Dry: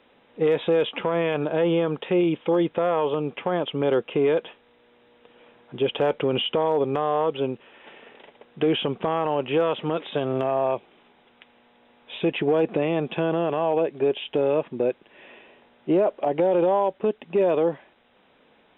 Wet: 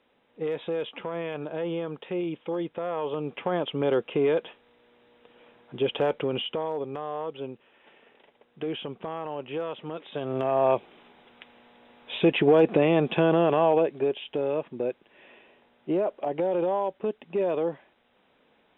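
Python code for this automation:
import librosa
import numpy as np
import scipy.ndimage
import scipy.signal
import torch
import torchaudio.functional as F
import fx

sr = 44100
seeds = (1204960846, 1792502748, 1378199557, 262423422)

y = fx.gain(x, sr, db=fx.line((2.82, -9.0), (3.45, -2.5), (6.02, -2.5), (6.89, -10.0), (10.02, -10.0), (10.71, 2.5), (13.64, 2.5), (14.19, -5.5)))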